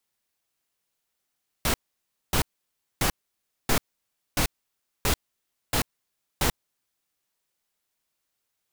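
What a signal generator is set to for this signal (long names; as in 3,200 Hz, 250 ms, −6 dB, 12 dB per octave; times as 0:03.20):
noise bursts pink, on 0.09 s, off 0.59 s, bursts 8, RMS −22.5 dBFS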